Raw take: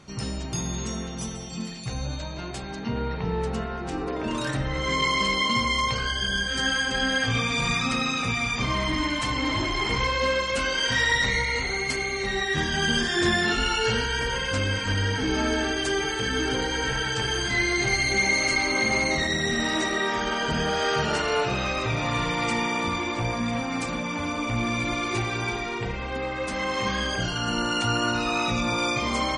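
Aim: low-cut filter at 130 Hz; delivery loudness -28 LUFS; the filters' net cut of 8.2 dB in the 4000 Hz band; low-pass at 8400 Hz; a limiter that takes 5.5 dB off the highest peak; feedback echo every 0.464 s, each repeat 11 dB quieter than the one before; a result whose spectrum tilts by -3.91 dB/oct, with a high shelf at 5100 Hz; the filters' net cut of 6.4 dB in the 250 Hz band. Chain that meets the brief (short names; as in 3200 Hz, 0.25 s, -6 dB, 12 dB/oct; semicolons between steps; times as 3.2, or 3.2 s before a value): HPF 130 Hz; LPF 8400 Hz; bell 250 Hz -8 dB; bell 4000 Hz -8.5 dB; high shelf 5100 Hz -6 dB; limiter -20.5 dBFS; feedback echo 0.464 s, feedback 28%, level -11 dB; gain +1.5 dB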